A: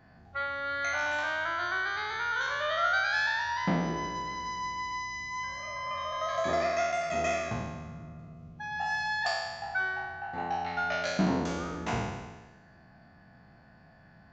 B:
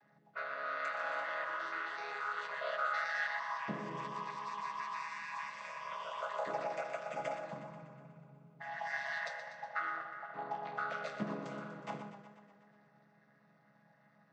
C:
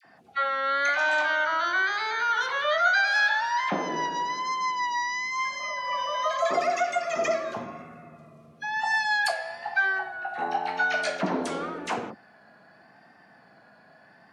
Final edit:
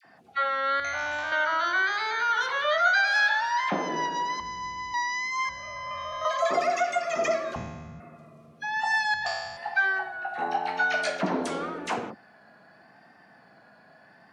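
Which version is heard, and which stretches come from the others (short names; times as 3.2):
C
0.8–1.32 from A
4.4–4.94 from A
5.49–6.25 from A
7.56–8 from A
9.14–9.57 from A
not used: B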